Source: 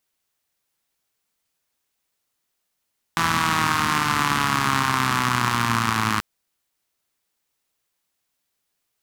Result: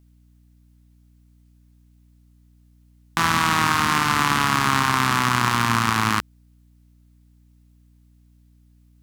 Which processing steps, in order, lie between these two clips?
hum 60 Hz, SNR 30 dB; gain +1.5 dB

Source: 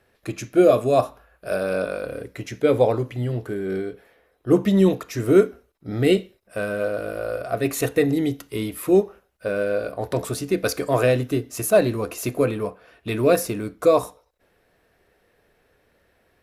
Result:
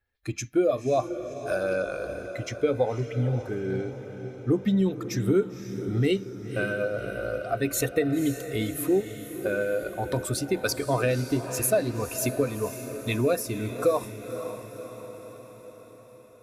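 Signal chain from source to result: per-bin expansion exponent 1.5; compressor 3:1, threshold -29 dBFS, peak gain reduction 13.5 dB; diffused feedback echo 0.533 s, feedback 58%, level -10.5 dB; gain +5.5 dB

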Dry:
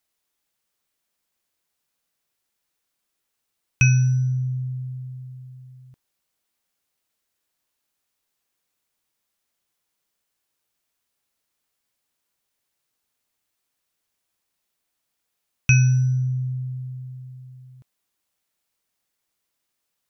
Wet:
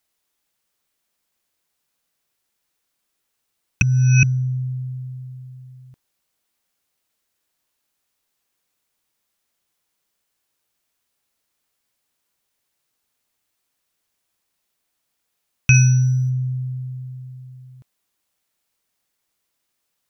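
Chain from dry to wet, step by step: 3.82–4.23 reverse; 15.74–16.3 high shelf 4700 Hz +10.5 dB; gain +3 dB

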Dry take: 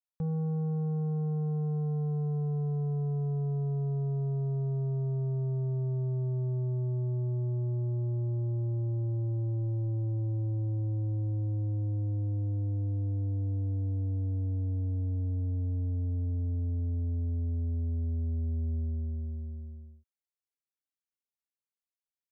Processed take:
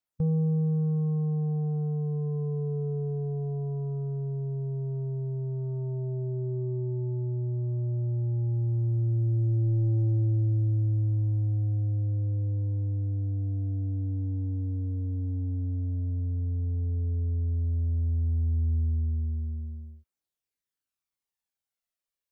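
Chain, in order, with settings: formant shift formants -3 st; phaser 0.1 Hz, delay 4 ms, feedback 39%; gain +2.5 dB

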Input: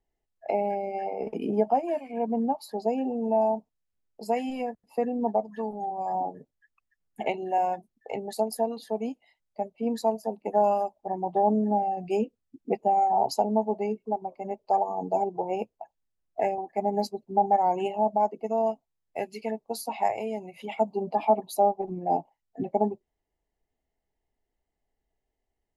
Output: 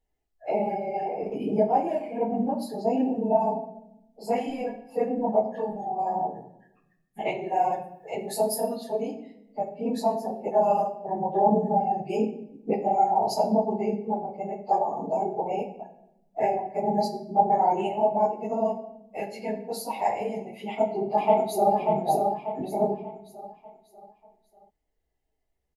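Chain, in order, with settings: phase scrambler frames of 50 ms; 7.72–8.75 high shelf 7000 Hz +11.5 dB; shoebox room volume 230 m³, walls mixed, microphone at 0.52 m; 20.58–21.75 echo throw 0.59 s, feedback 40%, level -4 dB

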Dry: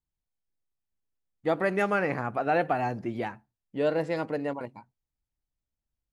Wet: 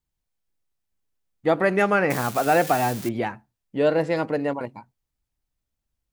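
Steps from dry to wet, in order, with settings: 2.1–3.09 switching spikes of -26.5 dBFS; gain +6 dB

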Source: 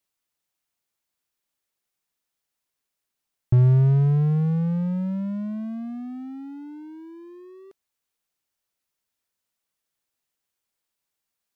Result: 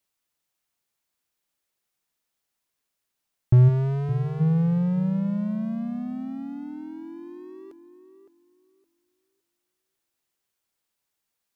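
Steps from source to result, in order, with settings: 3.68–4.39 HPF 260 Hz -> 750 Hz 6 dB/oct; tape echo 0.564 s, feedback 26%, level -8.5 dB, low-pass 1400 Hz; gain +1.5 dB

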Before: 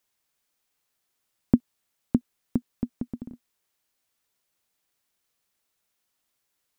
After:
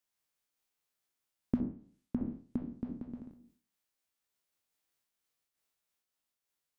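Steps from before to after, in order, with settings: spectral trails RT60 0.47 s; notches 60/120/180/240 Hz; 1.56–3.31 treble ducked by the level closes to 1800 Hz, closed at -19 dBFS; noise-modulated level, depth 60%; gain -7 dB

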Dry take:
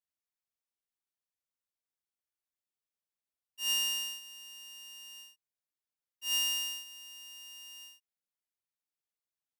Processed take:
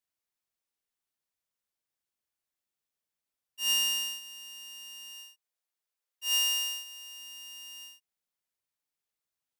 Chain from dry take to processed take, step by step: 5.12–7.19 steep high-pass 370 Hz 36 dB/oct; gain +3.5 dB

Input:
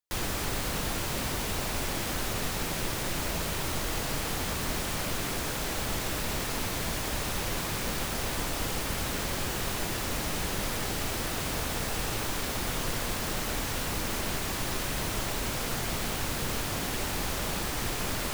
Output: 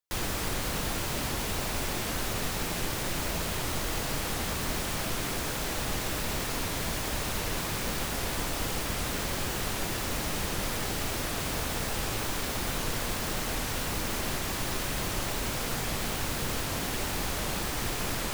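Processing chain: record warp 78 rpm, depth 160 cents

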